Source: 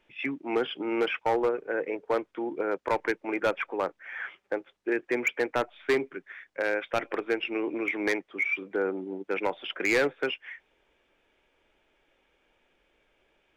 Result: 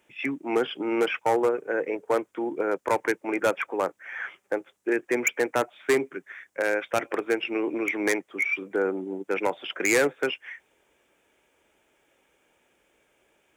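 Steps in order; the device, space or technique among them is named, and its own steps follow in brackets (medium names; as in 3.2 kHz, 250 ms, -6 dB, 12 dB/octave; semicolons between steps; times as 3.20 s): budget condenser microphone (high-pass 75 Hz; resonant high shelf 5.8 kHz +10 dB, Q 1.5); trim +3 dB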